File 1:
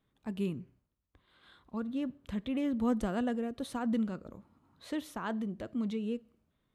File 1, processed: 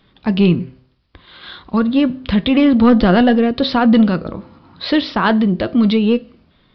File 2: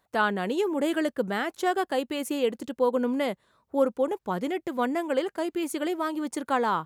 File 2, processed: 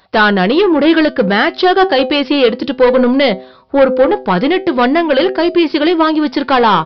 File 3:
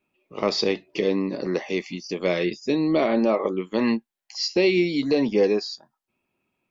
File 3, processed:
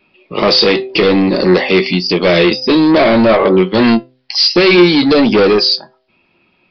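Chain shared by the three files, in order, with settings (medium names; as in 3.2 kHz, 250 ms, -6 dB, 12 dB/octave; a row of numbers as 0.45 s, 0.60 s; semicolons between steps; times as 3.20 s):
treble shelf 2.9 kHz +9 dB; de-hum 128.5 Hz, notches 6; saturation -24 dBFS; flange 0.58 Hz, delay 5.2 ms, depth 1 ms, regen +82%; resampled via 11.025 kHz; peak normalisation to -1.5 dBFS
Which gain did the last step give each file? +26.5 dB, +23.5 dB, +23.0 dB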